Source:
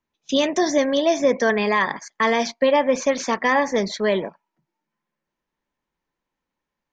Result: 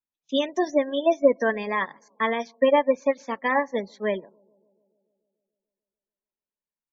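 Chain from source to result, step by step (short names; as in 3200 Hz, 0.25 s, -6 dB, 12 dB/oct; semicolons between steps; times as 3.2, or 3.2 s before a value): analogue delay 0.145 s, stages 1024, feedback 69%, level -20.5 dB; spectral gate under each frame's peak -25 dB strong; upward expander 2.5:1, over -28 dBFS; gain +2 dB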